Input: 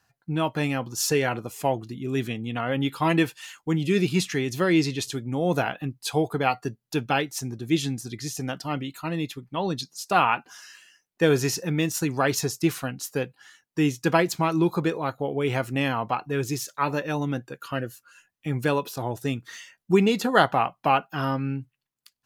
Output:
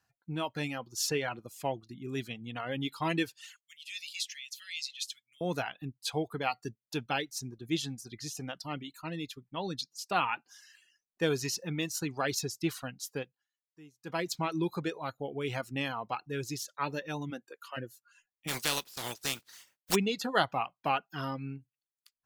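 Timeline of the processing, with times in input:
3.56–5.41 s: inverse Chebyshev high-pass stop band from 910 Hz, stop band 50 dB
13.15–14.32 s: dip -22 dB, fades 0.32 s
17.30–17.76 s: high-pass 140 Hz -> 560 Hz 24 dB/octave
18.47–19.94 s: spectral contrast reduction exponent 0.3
whole clip: reverb removal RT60 0.67 s; dynamic bell 4.2 kHz, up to +6 dB, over -45 dBFS, Q 0.91; trim -9 dB

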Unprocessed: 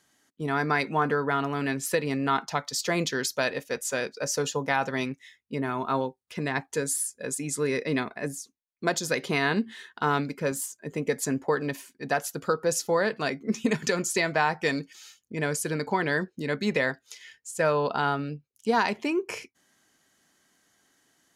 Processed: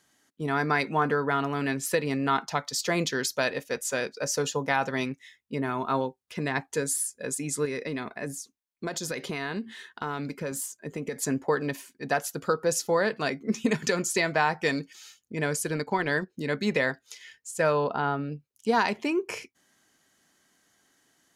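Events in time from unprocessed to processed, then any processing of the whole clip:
7.65–11.18 s: compression 5:1, threshold -28 dBFS
15.67–16.30 s: transient shaper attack -1 dB, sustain -8 dB
17.84–18.32 s: low-pass 1.5 kHz 6 dB/octave

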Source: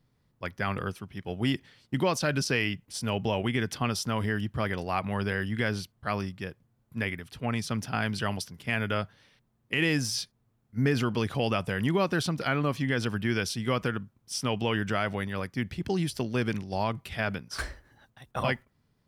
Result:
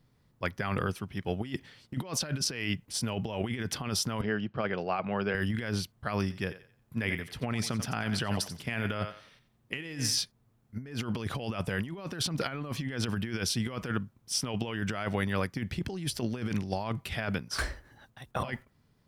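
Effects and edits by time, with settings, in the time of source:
4.21–5.35 s: cabinet simulation 200–4100 Hz, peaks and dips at 280 Hz -7 dB, 990 Hz -5 dB, 1.9 kHz -8 dB, 3.5 kHz -9 dB
6.21–10.18 s: thinning echo 89 ms, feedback 31%, high-pass 380 Hz, level -13 dB
whole clip: compressor with a negative ratio -31 dBFS, ratio -0.5

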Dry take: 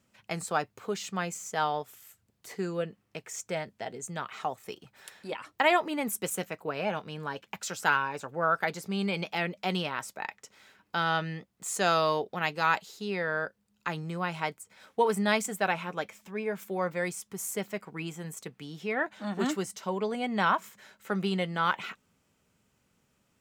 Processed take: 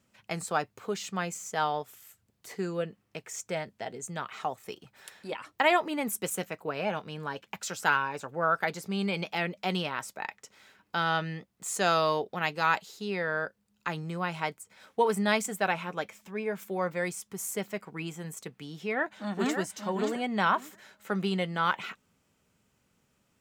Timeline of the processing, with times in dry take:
18.87–19.58 s: echo throw 580 ms, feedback 20%, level -6 dB

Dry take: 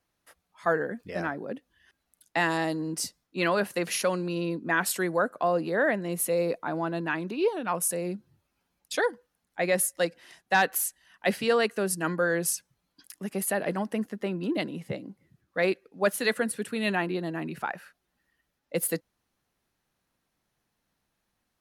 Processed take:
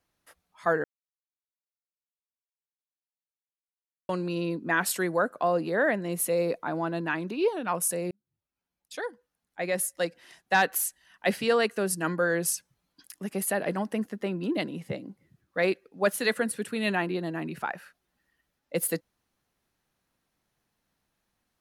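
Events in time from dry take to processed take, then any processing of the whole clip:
0.84–4.09 s: mute
8.11–10.55 s: fade in

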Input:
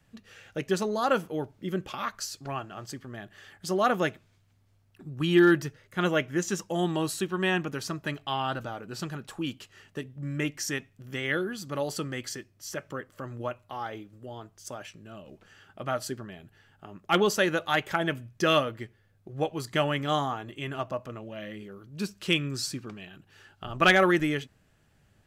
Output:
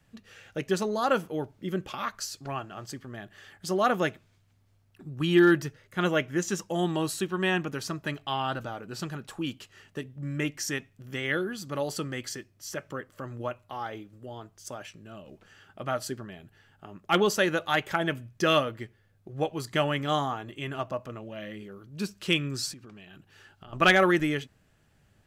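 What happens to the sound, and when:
22.73–23.73 s: compression, threshold -44 dBFS

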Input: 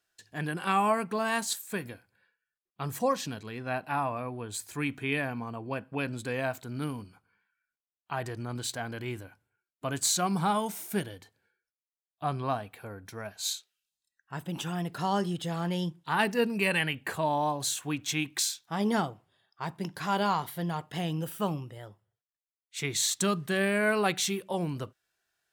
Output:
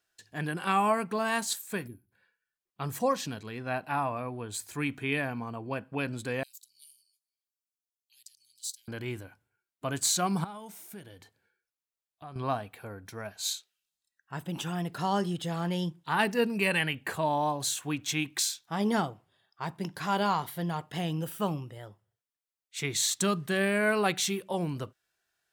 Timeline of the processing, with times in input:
1.87–2.12 s: time-frequency box 410–9800 Hz -24 dB
6.43–8.88 s: inverse Chebyshev high-pass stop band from 1.4 kHz, stop band 60 dB
10.44–12.36 s: compression 2.5:1, threshold -48 dBFS

